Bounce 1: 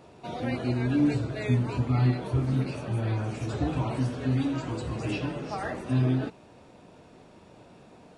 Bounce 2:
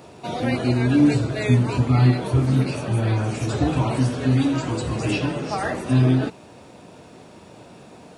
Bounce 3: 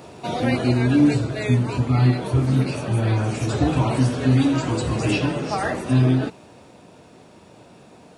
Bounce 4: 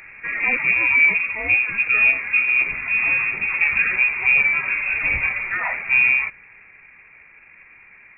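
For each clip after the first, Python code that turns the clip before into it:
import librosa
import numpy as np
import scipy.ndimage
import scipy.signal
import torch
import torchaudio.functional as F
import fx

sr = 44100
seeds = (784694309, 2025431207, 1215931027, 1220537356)

y1 = scipy.signal.sosfilt(scipy.signal.butter(2, 63.0, 'highpass', fs=sr, output='sos'), x)
y1 = fx.high_shelf(y1, sr, hz=6000.0, db=7.5)
y1 = y1 * 10.0 ** (7.5 / 20.0)
y2 = fx.rider(y1, sr, range_db=5, speed_s=2.0)
y3 = fx.quant_companded(y2, sr, bits=8)
y3 = fx.freq_invert(y3, sr, carrier_hz=2600)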